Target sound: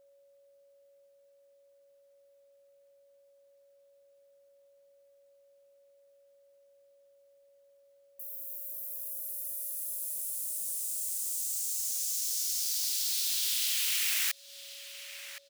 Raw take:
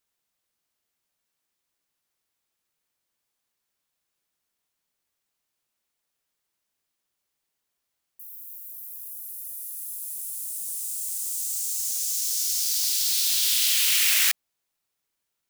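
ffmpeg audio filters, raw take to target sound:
-filter_complex "[0:a]aeval=exprs='val(0)+0.001*sin(2*PI*560*n/s)':c=same,asplit=2[s0][s1];[s1]adelay=1067,lowpass=f=3900:p=1,volume=0.112,asplit=2[s2][s3];[s3]adelay=1067,lowpass=f=3900:p=1,volume=0.26[s4];[s0][s2][s4]amix=inputs=3:normalize=0,acompressor=threshold=0.02:ratio=2"

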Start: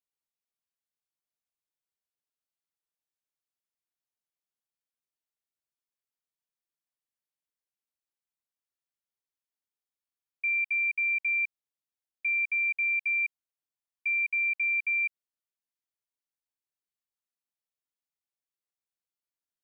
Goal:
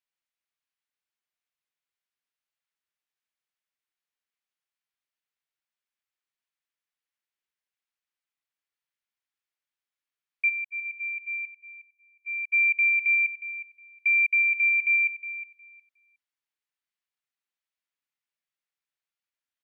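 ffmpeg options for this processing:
-filter_complex "[0:a]asplit=3[s0][s1][s2];[s0]afade=t=out:st=10.48:d=0.02[s3];[s1]agate=range=0.0141:threshold=0.0501:ratio=16:detection=peak,afade=t=in:st=10.48:d=0.02,afade=t=out:st=12.52:d=0.02[s4];[s2]afade=t=in:st=12.52:d=0.02[s5];[s3][s4][s5]amix=inputs=3:normalize=0,equalizer=f=2100:t=o:w=2.6:g=13,asplit=2[s6][s7];[s7]adelay=362,lowpass=f=2100:p=1,volume=0.316,asplit=2[s8][s9];[s9]adelay=362,lowpass=f=2100:p=1,volume=0.24,asplit=2[s10][s11];[s11]adelay=362,lowpass=f=2100:p=1,volume=0.24[s12];[s6][s8][s10][s12]amix=inputs=4:normalize=0,volume=0.473"

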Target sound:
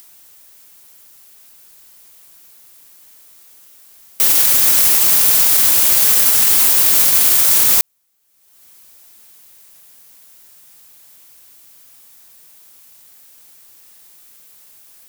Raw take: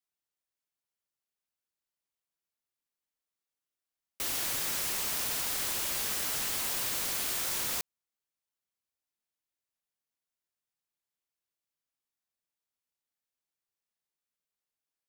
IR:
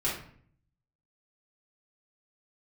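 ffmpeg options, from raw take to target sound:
-af "highshelf=f=7600:g=11.5,acompressor=mode=upward:threshold=0.00501:ratio=2.5,alimiter=level_in=8.91:limit=0.891:release=50:level=0:latency=1,volume=0.891"

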